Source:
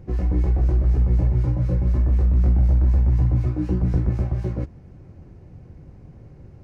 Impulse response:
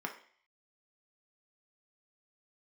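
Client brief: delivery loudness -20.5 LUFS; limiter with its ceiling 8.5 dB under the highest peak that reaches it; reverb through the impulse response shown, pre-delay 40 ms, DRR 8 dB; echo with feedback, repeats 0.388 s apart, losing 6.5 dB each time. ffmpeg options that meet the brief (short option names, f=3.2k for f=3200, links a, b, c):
-filter_complex "[0:a]alimiter=limit=-17.5dB:level=0:latency=1,aecho=1:1:388|776|1164|1552|1940|2328:0.473|0.222|0.105|0.0491|0.0231|0.0109,asplit=2[a][b];[1:a]atrim=start_sample=2205,adelay=40[c];[b][c]afir=irnorm=-1:irlink=0,volume=-10.5dB[d];[a][d]amix=inputs=2:normalize=0,volume=4dB"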